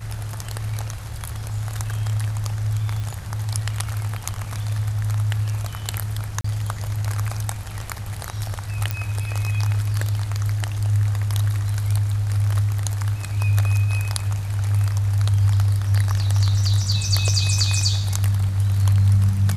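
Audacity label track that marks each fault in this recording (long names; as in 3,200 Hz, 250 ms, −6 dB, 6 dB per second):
3.000000	3.000000	click
6.410000	6.440000	drop-out 34 ms
8.910000	8.910000	click −9 dBFS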